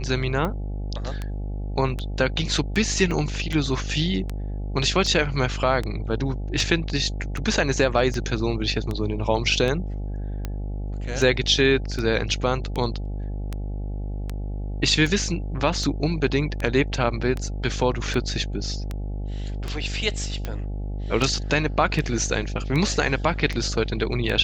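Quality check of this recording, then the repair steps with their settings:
mains buzz 50 Hz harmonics 17 −29 dBFS
scratch tick 78 rpm −15 dBFS
0:03.11: drop-out 3.9 ms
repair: click removal
hum removal 50 Hz, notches 17
repair the gap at 0:03.11, 3.9 ms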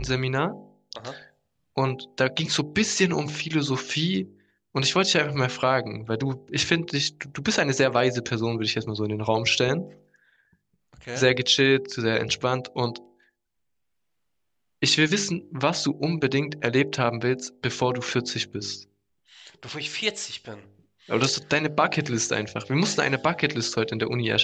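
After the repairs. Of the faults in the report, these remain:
none of them is left

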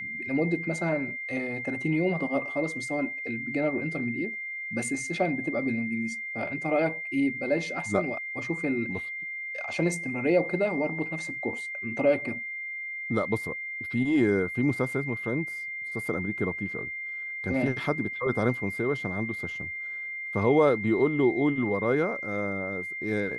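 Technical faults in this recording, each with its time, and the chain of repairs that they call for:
whistle 2,100 Hz −33 dBFS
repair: notch filter 2,100 Hz, Q 30

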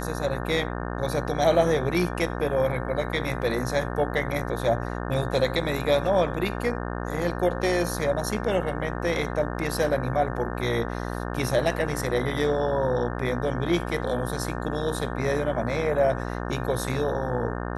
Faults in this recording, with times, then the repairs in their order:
mains buzz 60 Hz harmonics 30 −31 dBFS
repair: hum removal 60 Hz, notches 30

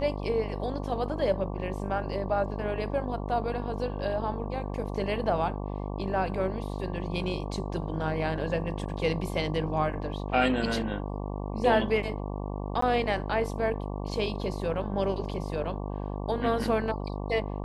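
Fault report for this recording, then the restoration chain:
mains buzz 50 Hz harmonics 23 −34 dBFS
0:12.81–0:12.82: drop-out 14 ms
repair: hum removal 50 Hz, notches 23
repair the gap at 0:12.81, 14 ms

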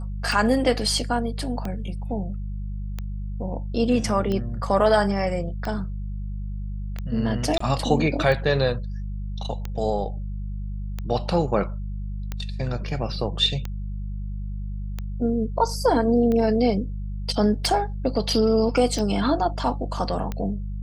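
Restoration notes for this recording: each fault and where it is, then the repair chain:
mains hum 50 Hz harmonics 4 −30 dBFS
scratch tick 45 rpm
0:07.58–0:07.60: drop-out 24 ms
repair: click removal
hum removal 50 Hz, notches 4
repair the gap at 0:07.58, 24 ms

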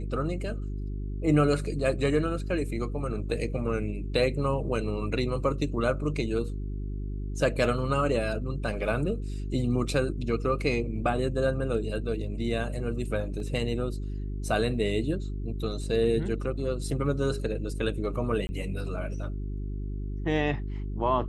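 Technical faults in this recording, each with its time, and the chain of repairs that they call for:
mains hum 50 Hz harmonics 8 −33 dBFS
0:13.40: drop-out 2.1 ms
0:18.47–0:18.49: drop-out 20 ms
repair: hum removal 50 Hz, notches 8
repair the gap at 0:13.40, 2.1 ms
repair the gap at 0:18.47, 20 ms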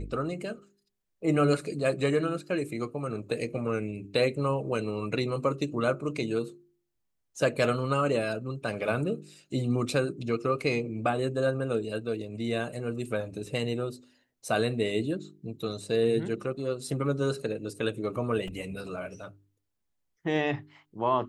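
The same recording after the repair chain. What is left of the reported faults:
none of them is left

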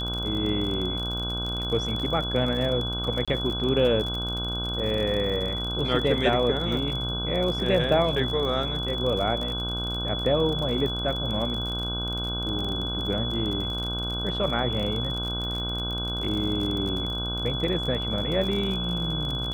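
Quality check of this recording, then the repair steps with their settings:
mains buzz 60 Hz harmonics 26 −32 dBFS
surface crackle 42 per second −30 dBFS
whistle 3,400 Hz −30 dBFS
0:03.25–0:03.28: drop-out 26 ms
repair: click removal
hum removal 60 Hz, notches 26
notch filter 3,400 Hz, Q 30
repair the gap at 0:03.25, 26 ms

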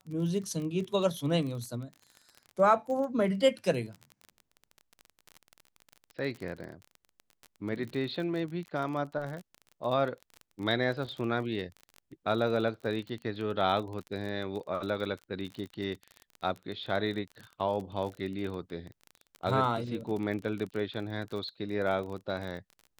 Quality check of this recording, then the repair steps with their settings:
surface crackle 30 per second −36 dBFS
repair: click removal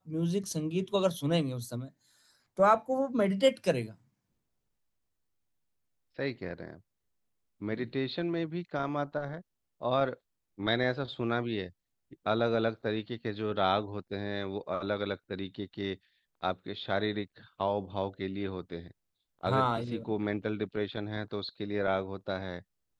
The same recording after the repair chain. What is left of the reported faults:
none of them is left

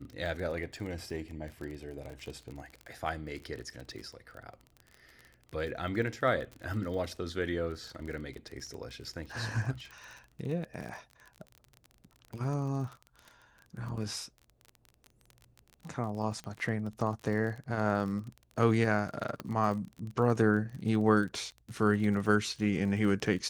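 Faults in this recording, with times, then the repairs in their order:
surface crackle 30 per second −38 dBFS
0:16.44: click −29 dBFS
0:19.40: click −23 dBFS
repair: click removal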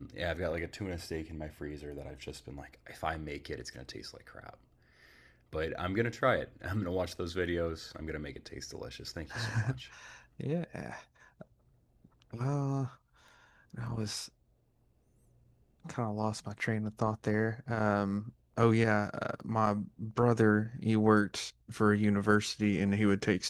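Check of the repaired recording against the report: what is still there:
0:19.40: click

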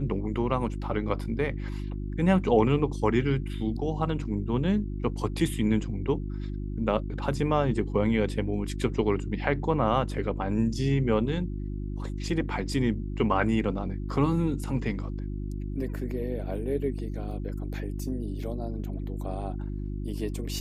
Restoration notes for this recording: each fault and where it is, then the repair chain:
mains hum 50 Hz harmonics 7 −33 dBFS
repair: hum removal 50 Hz, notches 7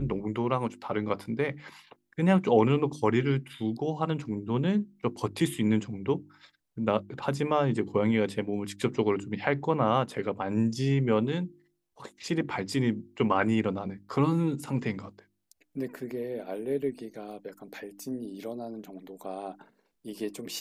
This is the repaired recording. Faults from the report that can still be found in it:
none of them is left

